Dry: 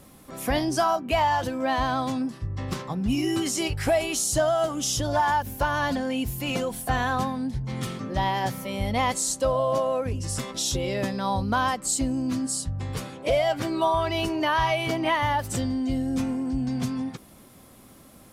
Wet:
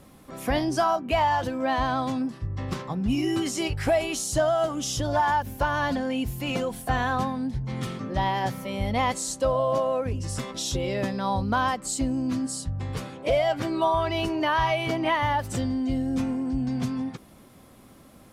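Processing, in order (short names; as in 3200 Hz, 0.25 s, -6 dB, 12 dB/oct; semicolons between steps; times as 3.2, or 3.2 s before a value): high shelf 5500 Hz -7 dB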